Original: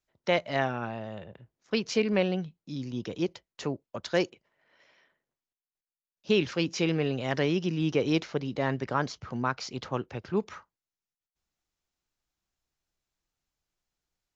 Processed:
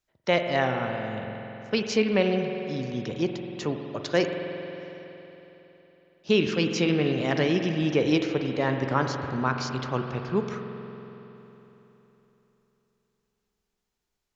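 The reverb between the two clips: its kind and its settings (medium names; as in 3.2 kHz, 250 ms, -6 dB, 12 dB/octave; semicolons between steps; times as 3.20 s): spring tank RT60 3.6 s, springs 46 ms, chirp 70 ms, DRR 4.5 dB; trim +2.5 dB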